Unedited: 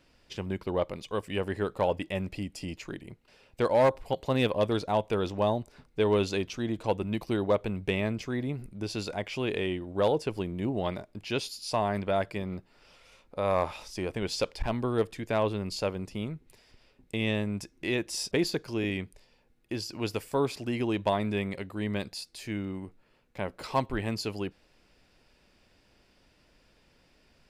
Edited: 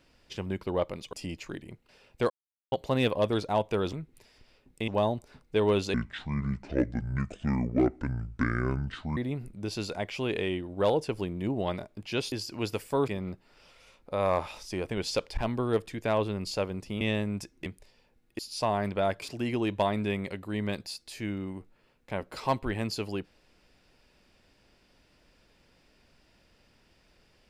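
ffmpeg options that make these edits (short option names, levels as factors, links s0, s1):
-filter_complex "[0:a]asplit=14[s0][s1][s2][s3][s4][s5][s6][s7][s8][s9][s10][s11][s12][s13];[s0]atrim=end=1.132[s14];[s1]atrim=start=2.518:end=3.69,asetpts=PTS-STARTPTS,afade=t=out:st=1.168:d=0.004:c=hsin[s15];[s2]atrim=start=3.69:end=4.11,asetpts=PTS-STARTPTS,volume=0[s16];[s3]atrim=start=4.11:end=5.322,asetpts=PTS-STARTPTS,afade=t=in:d=0.004:c=hsin[s17];[s4]atrim=start=16.258:end=17.212[s18];[s5]atrim=start=5.318:end=6.384[s19];[s6]atrim=start=6.38:end=8.35,asetpts=PTS-STARTPTS,asetrate=26901,aresample=44100,atrim=end_sample=142421,asetpts=PTS-STARTPTS[s20];[s7]atrim=start=8.346:end=11.502[s21];[s8]atrim=start=19.728:end=20.492[s22];[s9]atrim=start=12.328:end=16.262[s23];[s10]atrim=start=17.208:end=17.862[s24];[s11]atrim=start=18.998:end=19.732[s25];[s12]atrim=start=11.498:end=12.332[s26];[s13]atrim=start=20.488[s27];[s15][s16][s17]concat=n=3:v=0:a=1[s28];[s14][s28]acrossfade=d=0.004:c1=hsin:c2=hsin[s29];[s29][s18]acrossfade=d=0.004:c1=hsin:c2=hsin[s30];[s30][s19]acrossfade=d=0.004:c1=hsin:c2=hsin[s31];[s31][s20]acrossfade=d=0.004:c1=hsin:c2=hsin[s32];[s32][s21]acrossfade=d=0.004:c1=hsin:c2=hsin[s33];[s33][s22]acrossfade=d=0.004:c1=hsin:c2=hsin[s34];[s34][s23]acrossfade=d=0.004:c1=hsin:c2=hsin[s35];[s35][s24]acrossfade=d=0.004:c1=hsin:c2=hsin[s36];[s36][s25]acrossfade=d=0.004:c1=hsin:c2=hsin[s37];[s37][s26]acrossfade=d=0.004:c1=hsin:c2=hsin[s38];[s38][s27]acrossfade=d=0.004:c1=hsin:c2=hsin"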